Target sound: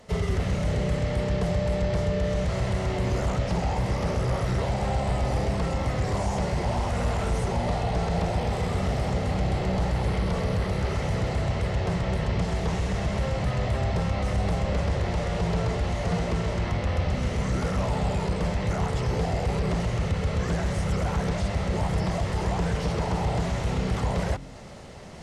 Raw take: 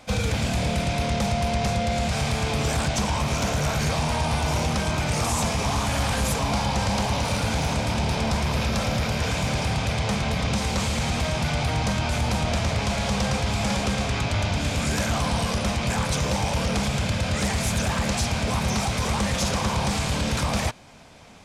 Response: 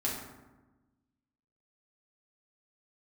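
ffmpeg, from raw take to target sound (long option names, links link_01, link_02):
-filter_complex "[0:a]acrossover=split=3500[link_01][link_02];[link_02]acompressor=threshold=-39dB:ratio=4:attack=1:release=60[link_03];[link_01][link_03]amix=inputs=2:normalize=0,equalizer=frequency=3300:width_type=o:width=2.9:gain=-7,bandreject=frequency=52.01:width_type=h:width=4,bandreject=frequency=104.02:width_type=h:width=4,bandreject=frequency=156.03:width_type=h:width=4,bandreject=frequency=208.04:width_type=h:width=4,bandreject=frequency=260.05:width_type=h:width=4,bandreject=frequency=312.06:width_type=h:width=4,bandreject=frequency=364.07:width_type=h:width=4,areverse,acompressor=mode=upward:threshold=-34dB:ratio=2.5,areverse,asetrate=37485,aresample=44100"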